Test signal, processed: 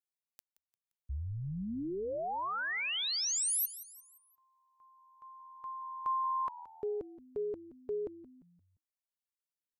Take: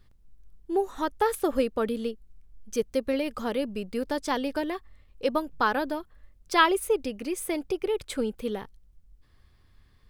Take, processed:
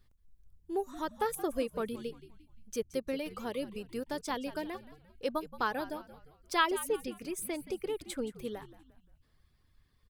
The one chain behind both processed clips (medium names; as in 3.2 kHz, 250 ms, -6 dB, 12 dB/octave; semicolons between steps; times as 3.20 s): treble shelf 5.9 kHz +5.5 dB; reverb removal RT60 0.66 s; frequency-shifting echo 174 ms, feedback 43%, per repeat -81 Hz, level -15.5 dB; trim -7.5 dB